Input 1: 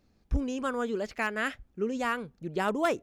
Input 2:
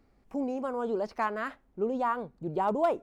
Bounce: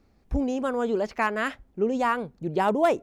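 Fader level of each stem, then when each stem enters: −1.0, +0.5 decibels; 0.00, 0.00 seconds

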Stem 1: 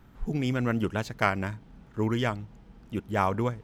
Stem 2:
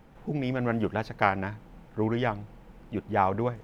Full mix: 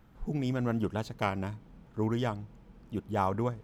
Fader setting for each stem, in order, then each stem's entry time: −6.0, −11.0 decibels; 0.00, 0.00 seconds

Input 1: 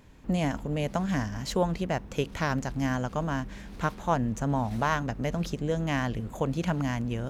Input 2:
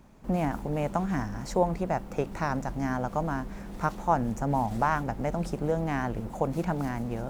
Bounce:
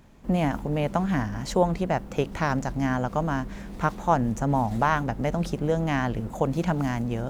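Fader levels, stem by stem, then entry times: −3.0, −1.5 decibels; 0.00, 0.00 seconds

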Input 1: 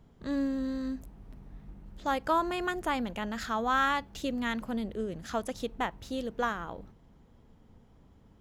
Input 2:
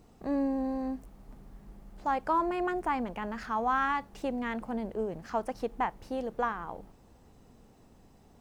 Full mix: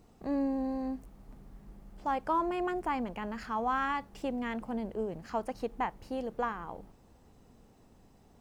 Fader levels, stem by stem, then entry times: −19.5, −2.0 decibels; 0.00, 0.00 seconds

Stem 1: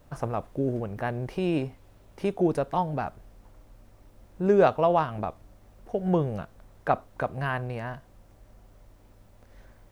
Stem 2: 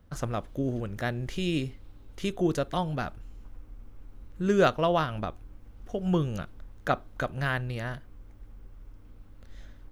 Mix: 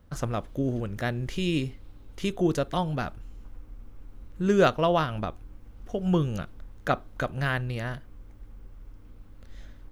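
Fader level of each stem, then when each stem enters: −17.5, +1.5 decibels; 0.00, 0.00 seconds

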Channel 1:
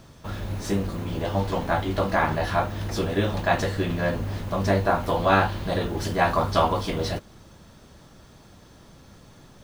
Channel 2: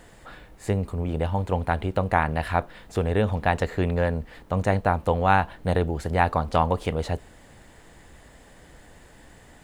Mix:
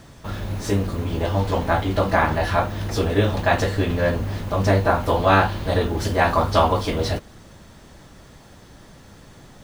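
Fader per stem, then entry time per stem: +3.0, −3.0 decibels; 0.00, 0.00 seconds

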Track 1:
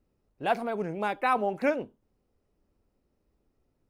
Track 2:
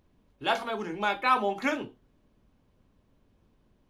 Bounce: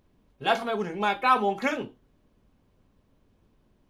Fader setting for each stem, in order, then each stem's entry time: −4.0, +1.0 decibels; 0.00, 0.00 seconds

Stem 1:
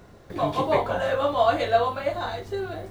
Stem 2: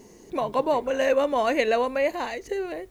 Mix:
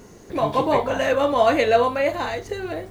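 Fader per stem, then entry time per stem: 0.0, +2.0 decibels; 0.00, 0.00 seconds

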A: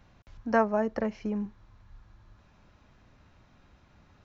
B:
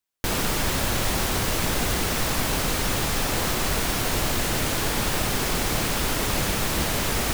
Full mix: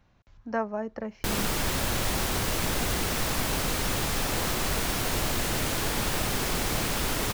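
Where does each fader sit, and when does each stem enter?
−5.0, −3.5 decibels; 0.00, 1.00 seconds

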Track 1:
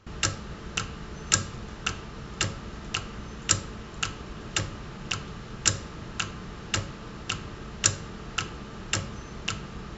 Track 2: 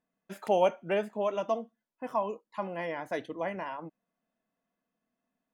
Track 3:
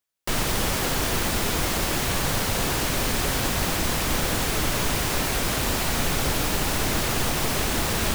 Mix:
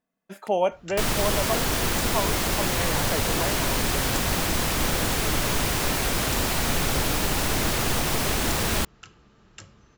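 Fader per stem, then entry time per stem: −17.0, +2.0, 0.0 decibels; 0.65, 0.00, 0.70 seconds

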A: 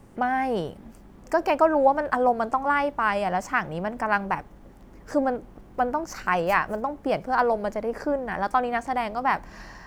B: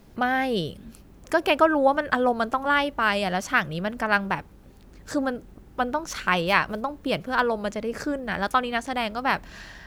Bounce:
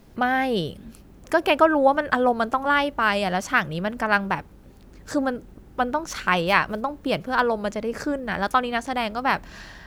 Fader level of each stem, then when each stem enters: −14.0, +0.5 decibels; 0.00, 0.00 seconds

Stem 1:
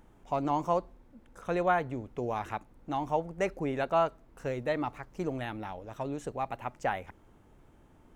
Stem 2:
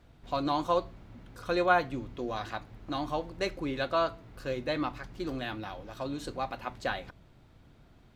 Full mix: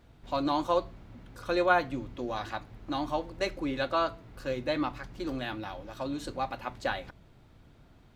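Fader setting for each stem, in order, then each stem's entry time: −11.5, +0.5 decibels; 0.00, 0.00 seconds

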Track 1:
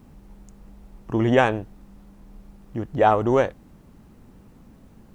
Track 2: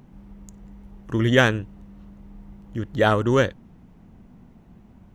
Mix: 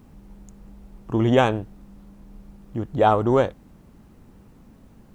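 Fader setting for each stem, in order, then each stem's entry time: −0.5, −12.5 decibels; 0.00, 0.00 seconds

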